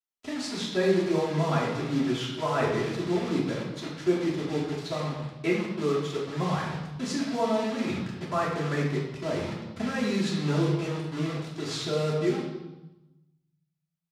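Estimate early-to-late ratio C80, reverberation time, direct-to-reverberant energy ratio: 5.0 dB, 1.0 s, −10.0 dB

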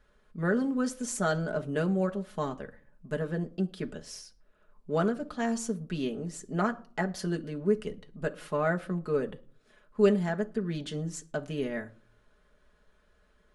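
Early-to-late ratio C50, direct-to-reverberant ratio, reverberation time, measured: 20.0 dB, 3.0 dB, non-exponential decay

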